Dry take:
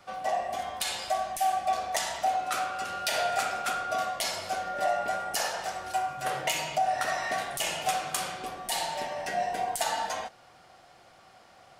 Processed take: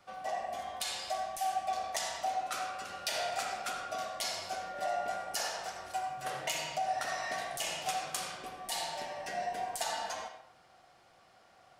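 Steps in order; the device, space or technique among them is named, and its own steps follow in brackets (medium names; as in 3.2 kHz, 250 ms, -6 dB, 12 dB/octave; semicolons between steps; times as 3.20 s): dynamic bell 5.3 kHz, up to +4 dB, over -43 dBFS, Q 1; filtered reverb send (on a send: high-pass 330 Hz + low-pass 8.6 kHz 12 dB/octave + reverberation RT60 0.60 s, pre-delay 73 ms, DRR 6 dB); on the sum: trim -7.5 dB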